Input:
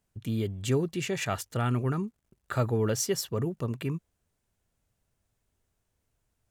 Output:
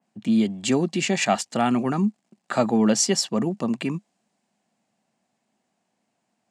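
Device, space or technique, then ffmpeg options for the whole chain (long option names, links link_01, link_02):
television speaker: -af "highpass=frequency=190:width=0.5412,highpass=frequency=190:width=1.3066,equalizer=frequency=210:width_type=q:width=4:gain=9,equalizer=frequency=430:width_type=q:width=4:gain=-7,equalizer=frequency=750:width_type=q:width=4:gain=8,equalizer=frequency=1400:width_type=q:width=4:gain=-5,equalizer=frequency=3500:width_type=q:width=4:gain=-4,equalizer=frequency=6000:width_type=q:width=4:gain=-5,lowpass=frequency=7700:width=0.5412,lowpass=frequency=7700:width=1.3066,adynamicequalizer=threshold=0.00316:dfrequency=3000:dqfactor=0.7:tfrequency=3000:tqfactor=0.7:attack=5:release=100:ratio=0.375:range=3:mode=boostabove:tftype=highshelf,volume=8dB"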